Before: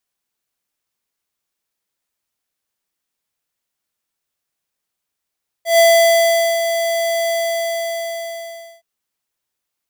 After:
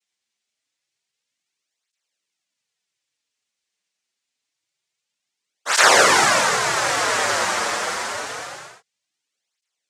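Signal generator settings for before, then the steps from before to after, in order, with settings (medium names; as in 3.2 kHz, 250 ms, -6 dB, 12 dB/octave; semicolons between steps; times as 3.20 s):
ADSR square 670 Hz, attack 135 ms, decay 803 ms, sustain -9 dB, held 1.65 s, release 1520 ms -9.5 dBFS
treble shelf 3.1 kHz +7.5 dB; noise-vocoded speech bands 3; cancelling through-zero flanger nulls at 0.26 Hz, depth 7.9 ms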